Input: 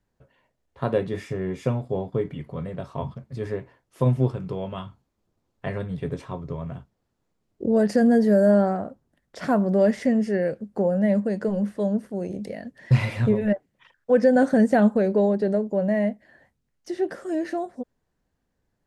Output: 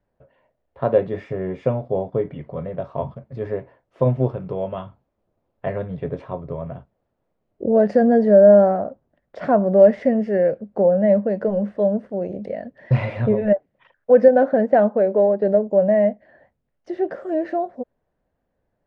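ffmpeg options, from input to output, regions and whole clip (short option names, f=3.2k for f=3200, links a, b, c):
-filter_complex "[0:a]asettb=1/sr,asplit=3[a][b][c];[a]atrim=end=14.284[d];[b]atrim=start=14.28:end=15.42,asetpts=PTS-STARTPTS,afade=t=in:d=0.004:c=qsin,afade=t=out:st=1.136:d=0.004:c=qsin,highpass=f=330:p=1,adynamicsmooth=sensitivity=1:basefreq=3.1k[e];[c]atrim=start=15.416[f];[d][e]acrossfade=d=0.004:c1=hsin:c2=qsin[g];[g][f]acrossfade=d=0.004:c1=qsin:c2=hsin,lowpass=2.6k,equalizer=f=600:t=o:w=0.77:g=9.5"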